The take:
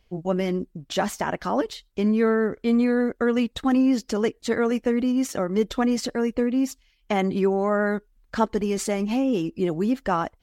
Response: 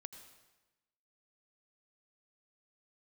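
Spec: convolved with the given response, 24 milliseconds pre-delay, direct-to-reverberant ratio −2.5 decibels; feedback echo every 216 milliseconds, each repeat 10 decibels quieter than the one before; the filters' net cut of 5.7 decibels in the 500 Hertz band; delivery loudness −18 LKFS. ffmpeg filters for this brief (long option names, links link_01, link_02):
-filter_complex "[0:a]equalizer=frequency=500:width_type=o:gain=-7,aecho=1:1:216|432|648|864:0.316|0.101|0.0324|0.0104,asplit=2[link_01][link_02];[1:a]atrim=start_sample=2205,adelay=24[link_03];[link_02][link_03]afir=irnorm=-1:irlink=0,volume=7.5dB[link_04];[link_01][link_04]amix=inputs=2:normalize=0,volume=3.5dB"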